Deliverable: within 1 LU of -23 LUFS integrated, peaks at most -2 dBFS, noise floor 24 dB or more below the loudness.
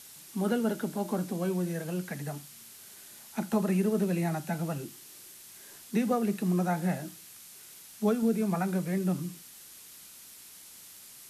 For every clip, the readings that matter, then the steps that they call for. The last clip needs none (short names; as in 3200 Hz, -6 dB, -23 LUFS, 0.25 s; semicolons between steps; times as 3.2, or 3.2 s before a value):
noise floor -51 dBFS; noise floor target -55 dBFS; loudness -31.0 LUFS; peak -17.0 dBFS; loudness target -23.0 LUFS
-> denoiser 6 dB, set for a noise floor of -51 dBFS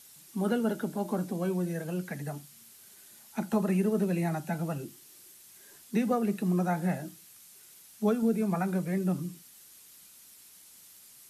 noise floor -55 dBFS; loudness -31.0 LUFS; peak -17.0 dBFS; loudness target -23.0 LUFS
-> gain +8 dB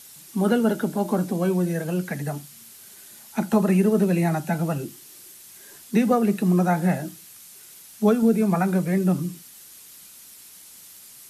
loudness -23.0 LUFS; peak -9.0 dBFS; noise floor -47 dBFS